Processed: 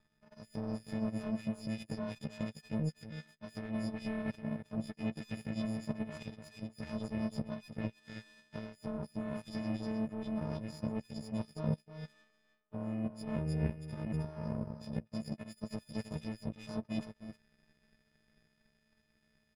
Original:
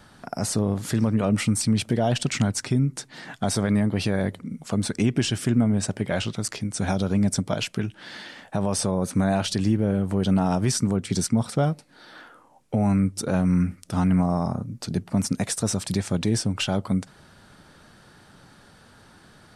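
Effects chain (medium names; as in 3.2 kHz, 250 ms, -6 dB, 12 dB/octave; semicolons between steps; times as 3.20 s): partials quantised in pitch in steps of 6 st; comb 5.2 ms, depth 53%; reverse; compression 6:1, threshold -30 dBFS, peak gain reduction 17.5 dB; reverse; tilt EQ -3.5 dB/octave; delay 313 ms -5.5 dB; power-law waveshaper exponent 2; trim -6.5 dB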